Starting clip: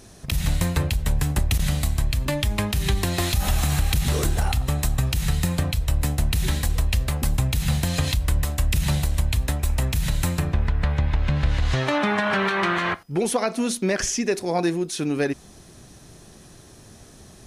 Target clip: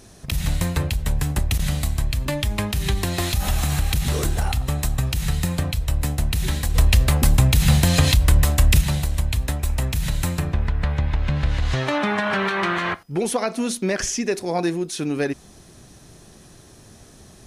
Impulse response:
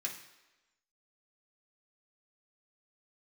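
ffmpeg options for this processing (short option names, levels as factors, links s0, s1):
-filter_complex "[0:a]asplit=3[s0][s1][s2];[s0]afade=t=out:st=6.74:d=0.02[s3];[s1]acontrast=84,afade=t=in:st=6.74:d=0.02,afade=t=out:st=8.8:d=0.02[s4];[s2]afade=t=in:st=8.8:d=0.02[s5];[s3][s4][s5]amix=inputs=3:normalize=0"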